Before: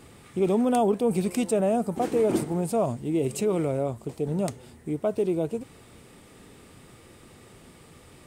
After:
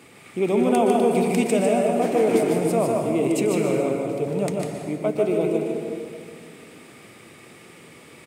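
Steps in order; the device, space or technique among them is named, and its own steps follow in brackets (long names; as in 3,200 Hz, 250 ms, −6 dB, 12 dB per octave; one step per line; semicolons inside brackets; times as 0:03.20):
PA in a hall (high-pass filter 170 Hz 12 dB per octave; parametric band 2,300 Hz +8 dB 0.49 octaves; single-tap delay 150 ms −4.5 dB; convolution reverb RT60 2.0 s, pre-delay 113 ms, DRR 3 dB)
level +1.5 dB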